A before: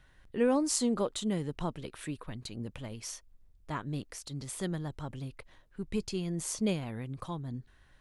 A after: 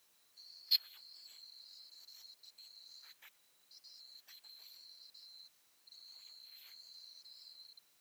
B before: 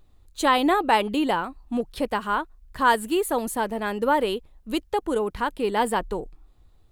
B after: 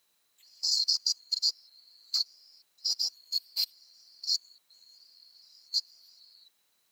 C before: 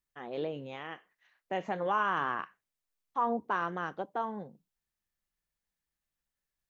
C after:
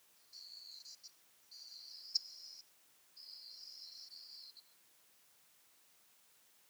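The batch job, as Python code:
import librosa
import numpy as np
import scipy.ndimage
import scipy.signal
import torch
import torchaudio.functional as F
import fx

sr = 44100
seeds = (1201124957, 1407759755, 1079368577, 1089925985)

y = fx.band_swap(x, sr, width_hz=4000)
y = fx.rev_gated(y, sr, seeds[0], gate_ms=210, shape='rising', drr_db=-7.0)
y = fx.chopper(y, sr, hz=1.4, depth_pct=65, duty_pct=10)
y = fx.level_steps(y, sr, step_db=22)
y = fx.filter_lfo_highpass(y, sr, shape='sine', hz=5.8, low_hz=680.0, high_hz=4200.0, q=1.1)
y = fx.whisperise(y, sr, seeds[1])
y = fx.dmg_noise_colour(y, sr, seeds[2], colour='white', level_db=-58.0)
y = scipy.signal.sosfilt(scipy.signal.butter(2, 86.0, 'highpass', fs=sr, output='sos'), y)
y = fx.low_shelf(y, sr, hz=220.0, db=-4.0)
y = fx.upward_expand(y, sr, threshold_db=-40.0, expansion=1.5)
y = F.gain(torch.from_numpy(y), -4.5).numpy()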